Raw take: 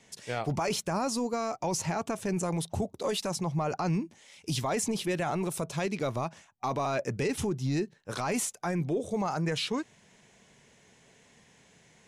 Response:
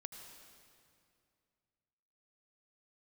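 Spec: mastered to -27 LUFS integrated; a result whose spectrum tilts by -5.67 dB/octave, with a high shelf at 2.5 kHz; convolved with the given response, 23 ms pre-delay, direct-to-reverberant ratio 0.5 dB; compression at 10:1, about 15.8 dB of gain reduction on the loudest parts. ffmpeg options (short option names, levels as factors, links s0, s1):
-filter_complex "[0:a]highshelf=f=2500:g=-8.5,acompressor=threshold=0.00708:ratio=10,asplit=2[s0][s1];[1:a]atrim=start_sample=2205,adelay=23[s2];[s1][s2]afir=irnorm=-1:irlink=0,volume=1.5[s3];[s0][s3]amix=inputs=2:normalize=0,volume=7.5"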